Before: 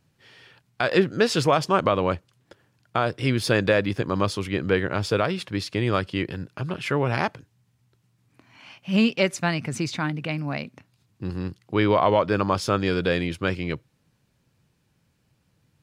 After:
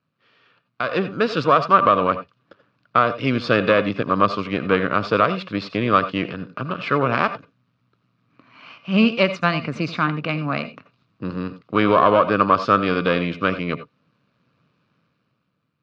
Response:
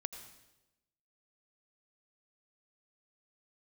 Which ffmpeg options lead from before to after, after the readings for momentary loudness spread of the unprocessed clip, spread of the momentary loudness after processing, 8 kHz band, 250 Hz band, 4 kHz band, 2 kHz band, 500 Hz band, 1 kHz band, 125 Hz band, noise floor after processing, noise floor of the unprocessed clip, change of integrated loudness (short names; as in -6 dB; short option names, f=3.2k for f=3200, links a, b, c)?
11 LU, 13 LU, under -10 dB, +3.0 dB, +1.0 dB, +4.0 dB, +3.0 dB, +8.0 dB, -0.5 dB, -71 dBFS, -69 dBFS, +4.0 dB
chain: -filter_complex "[0:a]aeval=exprs='if(lt(val(0),0),0.447*val(0),val(0))':c=same,highpass=180,equalizer=f=370:t=q:w=4:g=-6,equalizer=f=830:t=q:w=4:g=-9,equalizer=f=1.2k:t=q:w=4:g=9,equalizer=f=1.9k:t=q:w=4:g=-7,equalizer=f=3.3k:t=q:w=4:g=-5,lowpass=f=3.9k:w=0.5412,lowpass=f=3.9k:w=1.3066[a];[1:a]atrim=start_sample=2205,atrim=end_sample=4410[b];[a][b]afir=irnorm=-1:irlink=0,dynaudnorm=f=140:g=13:m=12dB"